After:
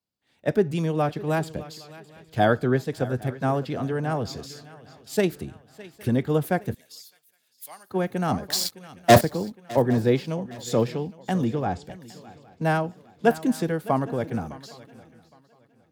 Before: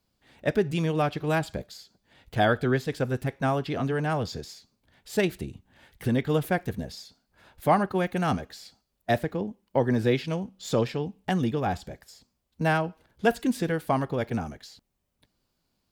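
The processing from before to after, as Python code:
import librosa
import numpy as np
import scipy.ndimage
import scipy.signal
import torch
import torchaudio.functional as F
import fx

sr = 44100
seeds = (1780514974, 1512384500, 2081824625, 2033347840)

y = fx.leveller(x, sr, passes=5, at=(8.49, 9.21))
y = fx.lowpass(y, sr, hz=8600.0, slope=24, at=(11.44, 11.85))
y = fx.echo_swing(y, sr, ms=813, ratio=3, feedback_pct=35, wet_db=-16.0)
y = fx.dynamic_eq(y, sr, hz=2600.0, q=0.72, threshold_db=-42.0, ratio=4.0, max_db=-6)
y = scipy.signal.sosfilt(scipy.signal.butter(2, 84.0, 'highpass', fs=sr, output='sos'), y)
y = fx.differentiator(y, sr, at=(6.74, 7.9))
y = fx.band_widen(y, sr, depth_pct=40)
y = y * librosa.db_to_amplitude(2.0)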